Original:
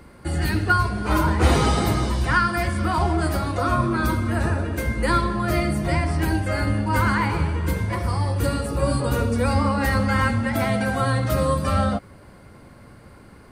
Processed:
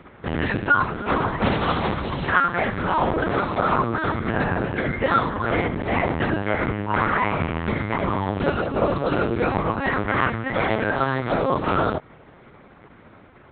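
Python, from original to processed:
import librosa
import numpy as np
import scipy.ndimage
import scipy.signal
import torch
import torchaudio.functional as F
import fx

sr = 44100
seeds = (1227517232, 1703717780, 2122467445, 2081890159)

y = fx.rider(x, sr, range_db=3, speed_s=0.5)
y = fx.lpc_vocoder(y, sr, seeds[0], excitation='pitch_kept', order=8)
y = fx.highpass(y, sr, hz=200.0, slope=6)
y = y * librosa.db_to_amplitude(2.5)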